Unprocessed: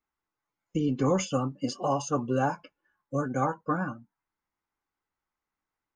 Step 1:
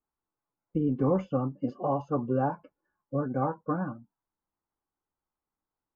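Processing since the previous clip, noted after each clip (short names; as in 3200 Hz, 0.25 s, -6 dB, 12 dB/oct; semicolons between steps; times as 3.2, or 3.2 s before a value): LPF 1000 Hz 12 dB/oct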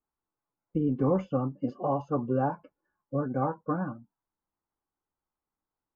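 nothing audible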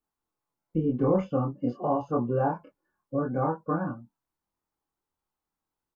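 doubler 25 ms -2 dB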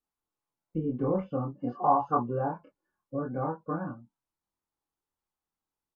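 treble ducked by the level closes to 2100 Hz, closed at -21 dBFS; spectral gain 1.6–2.22, 710–1800 Hz +12 dB; gain -4.5 dB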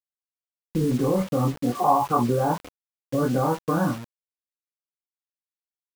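in parallel at +1 dB: negative-ratio compressor -33 dBFS, ratio -0.5; on the sum: bit-crush 7-bit; gain +3.5 dB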